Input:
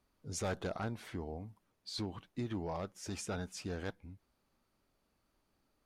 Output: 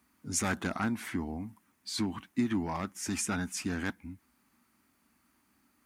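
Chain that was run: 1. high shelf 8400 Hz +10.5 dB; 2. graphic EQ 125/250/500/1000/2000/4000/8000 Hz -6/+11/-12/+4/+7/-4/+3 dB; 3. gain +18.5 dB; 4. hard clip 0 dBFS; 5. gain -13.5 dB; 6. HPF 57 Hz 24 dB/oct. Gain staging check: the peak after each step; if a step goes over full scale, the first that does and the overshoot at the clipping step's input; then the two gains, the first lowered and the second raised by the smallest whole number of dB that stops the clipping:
-23.0, -21.5, -3.0, -3.0, -16.5, -16.5 dBFS; no overload

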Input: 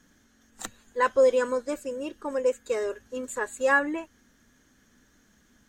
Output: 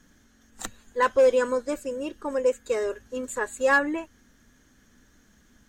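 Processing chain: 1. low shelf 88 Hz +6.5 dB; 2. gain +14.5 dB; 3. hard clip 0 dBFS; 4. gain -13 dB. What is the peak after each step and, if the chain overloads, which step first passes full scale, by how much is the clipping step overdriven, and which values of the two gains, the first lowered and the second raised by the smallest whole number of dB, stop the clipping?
-11.5, +3.0, 0.0, -13.0 dBFS; step 2, 3.0 dB; step 2 +11.5 dB, step 4 -10 dB

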